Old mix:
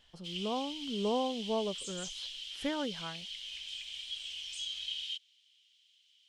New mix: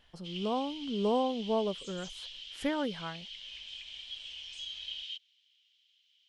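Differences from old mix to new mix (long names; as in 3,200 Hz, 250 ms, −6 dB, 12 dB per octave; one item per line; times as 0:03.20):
speech +3.0 dB
background: add high-frequency loss of the air 110 metres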